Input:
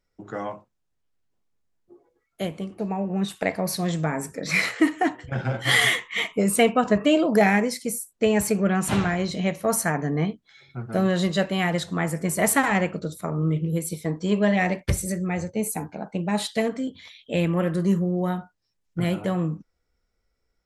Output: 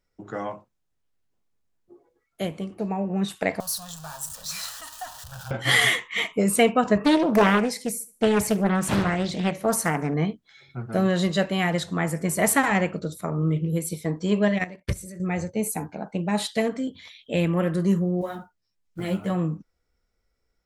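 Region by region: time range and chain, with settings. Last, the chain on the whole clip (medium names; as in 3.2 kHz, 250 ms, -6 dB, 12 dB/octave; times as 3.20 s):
3.60–5.51 s: jump at every zero crossing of -27.5 dBFS + amplifier tone stack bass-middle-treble 10-0-10 + static phaser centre 890 Hz, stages 4
7.03–10.14 s: feedback delay 72 ms, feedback 35%, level -20 dB + loudspeaker Doppler distortion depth 0.63 ms
14.48–15.20 s: band-stop 820 Hz, Q 5.2 + level held to a coarse grid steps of 11 dB + upward expansion, over -40 dBFS
18.21–19.30 s: block-companded coder 7-bit + three-phase chorus
whole clip: none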